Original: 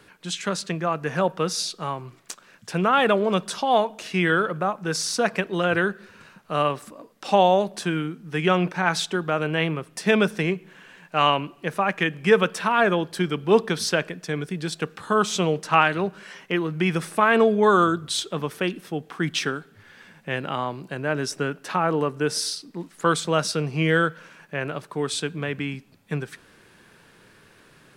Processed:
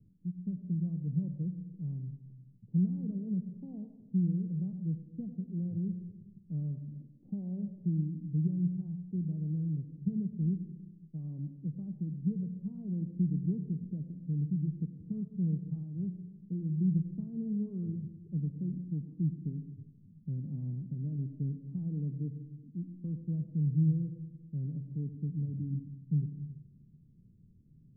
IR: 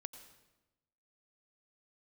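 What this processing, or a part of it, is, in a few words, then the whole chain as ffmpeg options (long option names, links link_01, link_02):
club heard from the street: -filter_complex "[0:a]alimiter=limit=-13.5dB:level=0:latency=1:release=334,lowpass=frequency=190:width=0.5412,lowpass=frequency=190:width=1.3066[link_01];[1:a]atrim=start_sample=2205[link_02];[link_01][link_02]afir=irnorm=-1:irlink=0,volume=5.5dB"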